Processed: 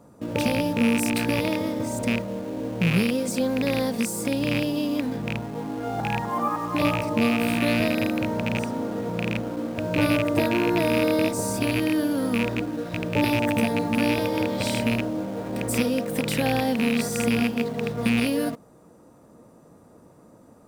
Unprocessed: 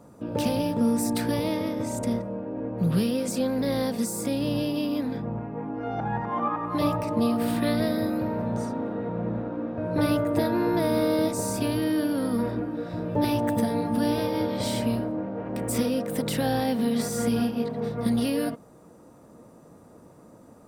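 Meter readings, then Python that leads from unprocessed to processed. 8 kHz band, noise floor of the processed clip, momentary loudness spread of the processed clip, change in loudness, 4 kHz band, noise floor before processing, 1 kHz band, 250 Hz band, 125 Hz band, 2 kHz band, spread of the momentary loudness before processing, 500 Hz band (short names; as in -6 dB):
+2.0 dB, -52 dBFS, 7 LU, +2.5 dB, +4.5 dB, -51 dBFS, +2.0 dB, +1.5 dB, +2.0 dB, +9.5 dB, 7 LU, +1.5 dB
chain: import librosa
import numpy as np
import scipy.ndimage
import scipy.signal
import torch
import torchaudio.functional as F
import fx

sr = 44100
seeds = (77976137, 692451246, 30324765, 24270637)

p1 = fx.rattle_buzz(x, sr, strikes_db=-27.0, level_db=-17.0)
p2 = fx.quant_dither(p1, sr, seeds[0], bits=6, dither='none')
p3 = p1 + (p2 * librosa.db_to_amplitude(-9.0))
y = p3 * librosa.db_to_amplitude(-1.0)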